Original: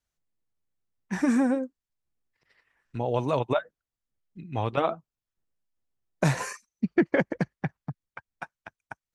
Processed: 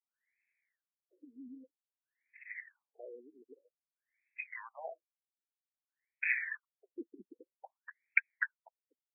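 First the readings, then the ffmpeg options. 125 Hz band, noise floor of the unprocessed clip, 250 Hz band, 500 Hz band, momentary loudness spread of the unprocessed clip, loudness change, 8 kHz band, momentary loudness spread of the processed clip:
below −40 dB, below −85 dBFS, −27.0 dB, −23.5 dB, 19 LU, −9.5 dB, below −35 dB, 22 LU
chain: -af "aexciter=amount=15:drive=8.2:freq=2000,aderivative,areverse,acompressor=threshold=-24dB:ratio=16,areverse,highshelf=frequency=2900:width_type=q:width=3:gain=-13,afftfilt=real='re*between(b*sr/1024,300*pow(1900/300,0.5+0.5*sin(2*PI*0.52*pts/sr))/1.41,300*pow(1900/300,0.5+0.5*sin(2*PI*0.52*pts/sr))*1.41)':imag='im*between(b*sr/1024,300*pow(1900/300,0.5+0.5*sin(2*PI*0.52*pts/sr))/1.41,300*pow(1900/300,0.5+0.5*sin(2*PI*0.52*pts/sr))*1.41)':win_size=1024:overlap=0.75,volume=6.5dB"

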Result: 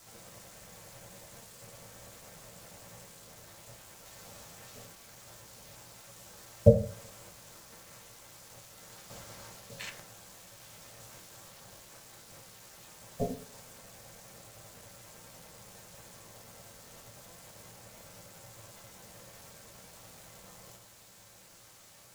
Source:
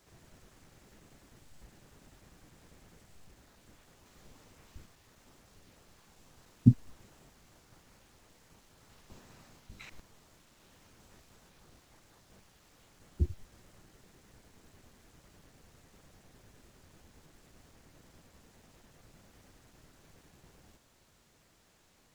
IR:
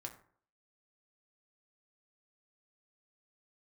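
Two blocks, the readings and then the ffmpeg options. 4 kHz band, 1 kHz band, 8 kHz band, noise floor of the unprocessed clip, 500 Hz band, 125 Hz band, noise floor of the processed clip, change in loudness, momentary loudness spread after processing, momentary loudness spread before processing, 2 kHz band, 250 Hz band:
+10.5 dB, +11.0 dB, +14.0 dB, −66 dBFS, +23.5 dB, 0.0 dB, −56 dBFS, −8.0 dB, 8 LU, 10 LU, +8.5 dB, −3.0 dB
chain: -filter_complex "[0:a]highpass=frequency=110:width=0.5412,highpass=frequency=110:width=1.3066,highshelf=frequency=4600:gain=11,alimiter=limit=-13.5dB:level=0:latency=1:release=251,aeval=exprs='val(0)*sin(2*PI*340*n/s)':channel_layout=same[link_01];[1:a]atrim=start_sample=2205[link_02];[link_01][link_02]afir=irnorm=-1:irlink=0,volume=13.5dB"

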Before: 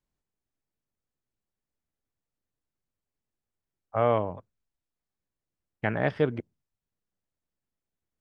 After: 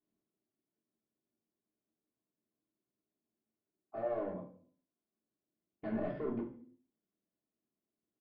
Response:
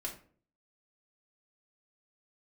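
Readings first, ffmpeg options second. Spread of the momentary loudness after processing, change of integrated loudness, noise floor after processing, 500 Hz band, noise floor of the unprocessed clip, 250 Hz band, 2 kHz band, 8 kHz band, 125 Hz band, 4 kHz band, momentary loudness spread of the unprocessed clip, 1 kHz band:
12 LU, −11.5 dB, below −85 dBFS, −11.0 dB, below −85 dBFS, −6.0 dB, −19.5 dB, can't be measured, −16.5 dB, below −20 dB, 13 LU, −15.0 dB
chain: -filter_complex "[0:a]aemphasis=mode=production:type=bsi,bandreject=frequency=253.4:width_type=h:width=4,bandreject=frequency=506.8:width_type=h:width=4,bandreject=frequency=760.2:width_type=h:width=4,bandreject=frequency=1013.6:width_type=h:width=4,bandreject=frequency=1267:width_type=h:width=4,bandreject=frequency=1520.4:width_type=h:width=4,bandreject=frequency=1773.8:width_type=h:width=4,bandreject=frequency=2027.2:width_type=h:width=4,bandreject=frequency=2280.6:width_type=h:width=4,bandreject=frequency=2534:width_type=h:width=4,bandreject=frequency=2787.4:width_type=h:width=4,bandreject=frequency=3040.8:width_type=h:width=4,bandreject=frequency=3294.2:width_type=h:width=4,bandreject=frequency=3547.6:width_type=h:width=4,bandreject=frequency=3801:width_type=h:width=4,bandreject=frequency=4054.4:width_type=h:width=4,bandreject=frequency=4307.8:width_type=h:width=4,bandreject=frequency=4561.2:width_type=h:width=4,bandreject=frequency=4814.6:width_type=h:width=4,bandreject=frequency=5068:width_type=h:width=4,bandreject=frequency=5321.4:width_type=h:width=4,bandreject=frequency=5574.8:width_type=h:width=4,bandreject=frequency=5828.2:width_type=h:width=4,bandreject=frequency=6081.6:width_type=h:width=4,bandreject=frequency=6335:width_type=h:width=4,bandreject=frequency=6588.4:width_type=h:width=4,bandreject=frequency=6841.8:width_type=h:width=4,bandreject=frequency=7095.2:width_type=h:width=4,bandreject=frequency=7348.6:width_type=h:width=4,bandreject=frequency=7602:width_type=h:width=4,bandreject=frequency=7855.4:width_type=h:width=4,bandreject=frequency=8108.8:width_type=h:width=4,bandreject=frequency=8362.2:width_type=h:width=4,bandreject=frequency=8615.6:width_type=h:width=4,bandreject=frequency=8869:width_type=h:width=4,bandreject=frequency=9122.4:width_type=h:width=4,bandreject=frequency=9375.8:width_type=h:width=4,bandreject=frequency=9629.2:width_type=h:width=4,asplit=2[link_01][link_02];[link_02]acompressor=threshold=-39dB:ratio=6,volume=0dB[link_03];[link_01][link_03]amix=inputs=2:normalize=0,asoftclip=type=hard:threshold=-27dB,bandpass=frequency=240:width_type=q:width=1.5:csg=0,aresample=11025,asoftclip=type=tanh:threshold=-37dB,aresample=44100,aecho=1:1:72|144|216:0.0794|0.031|0.0121[link_04];[1:a]atrim=start_sample=2205[link_05];[link_04][link_05]afir=irnorm=-1:irlink=0,volume=5dB"

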